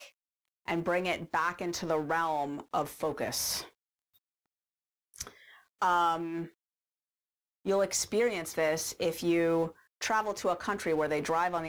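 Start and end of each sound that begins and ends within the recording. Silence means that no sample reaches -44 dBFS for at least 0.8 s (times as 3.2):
5.14–6.47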